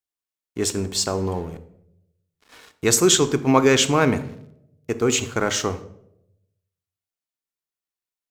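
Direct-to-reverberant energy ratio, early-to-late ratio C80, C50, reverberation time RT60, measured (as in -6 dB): 10.0 dB, 17.5 dB, 14.5 dB, 0.80 s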